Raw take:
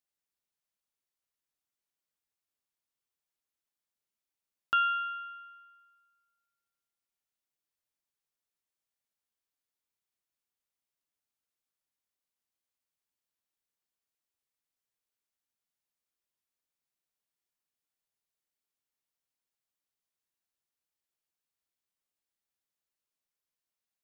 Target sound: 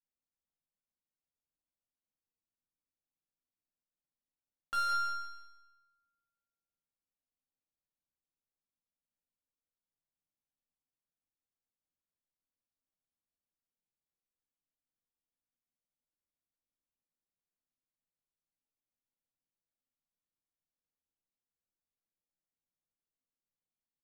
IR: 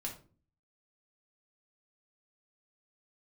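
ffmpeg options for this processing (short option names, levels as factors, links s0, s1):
-filter_complex "[0:a]asplit=2[s0][s1];[s1]aeval=exprs='(mod(22.4*val(0)+1,2)-1)/22.4':c=same,volume=0.376[s2];[s0][s2]amix=inputs=2:normalize=0,adynamicsmooth=sensitivity=5:basefreq=850,asoftclip=type=tanh:threshold=0.0891,aecho=1:1:161|322|483|644:0.447|0.143|0.0457|0.0146[s3];[1:a]atrim=start_sample=2205[s4];[s3][s4]afir=irnorm=-1:irlink=0,volume=0.596"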